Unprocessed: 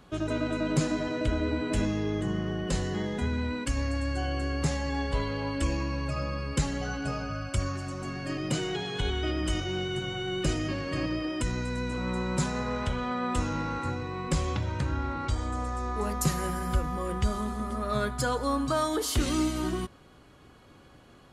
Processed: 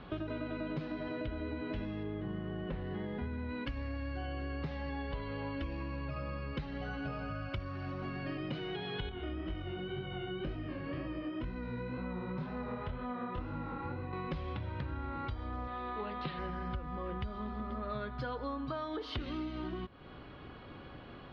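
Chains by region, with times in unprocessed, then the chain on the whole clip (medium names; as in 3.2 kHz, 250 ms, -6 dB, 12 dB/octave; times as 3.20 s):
2.03–3.49 s: median filter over 9 samples + treble shelf 4.9 kHz -7 dB
9.09–14.13 s: treble shelf 2.4 kHz -9 dB + chorus 2 Hz, delay 20 ms, depth 6.5 ms
15.67–16.39 s: high-pass 220 Hz 6 dB/octave + resonant high shelf 5.2 kHz -13.5 dB, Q 3
whole clip: inverse Chebyshev low-pass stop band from 7.1 kHz, stop band 40 dB; compression, threshold -42 dBFS; trim +5 dB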